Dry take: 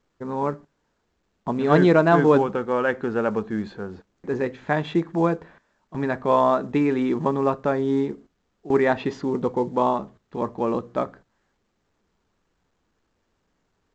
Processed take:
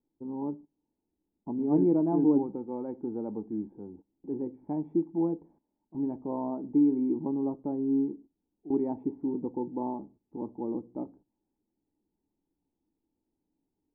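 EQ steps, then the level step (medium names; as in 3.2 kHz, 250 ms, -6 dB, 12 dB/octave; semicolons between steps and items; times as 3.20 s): cascade formant filter u; distance through air 170 m; 0.0 dB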